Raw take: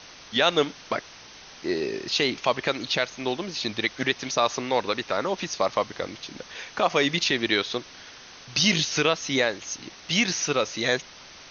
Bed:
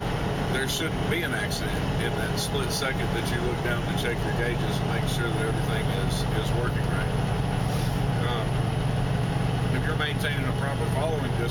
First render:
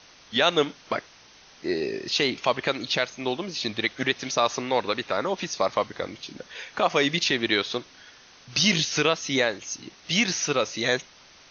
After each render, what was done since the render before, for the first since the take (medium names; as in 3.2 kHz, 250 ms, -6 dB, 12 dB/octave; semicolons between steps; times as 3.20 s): noise print and reduce 6 dB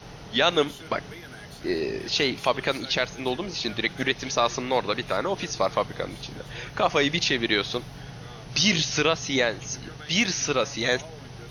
add bed -15.5 dB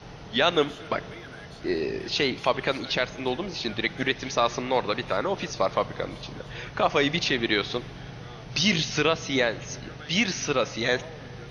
distance through air 78 m; spring tank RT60 3.6 s, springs 41/49 ms, chirp 60 ms, DRR 18.5 dB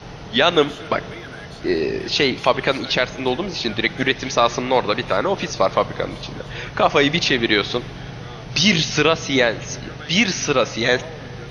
trim +7 dB; peak limiter -2 dBFS, peak gain reduction 1.5 dB